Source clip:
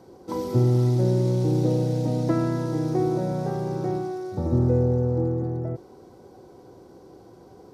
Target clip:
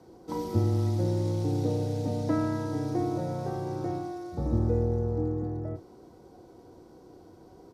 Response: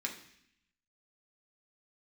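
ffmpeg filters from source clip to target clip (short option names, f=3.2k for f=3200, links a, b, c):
-filter_complex "[0:a]afreqshift=-20,asplit=2[a][b];[b]adelay=33,volume=-11dB[c];[a][c]amix=inputs=2:normalize=0,volume=-4dB"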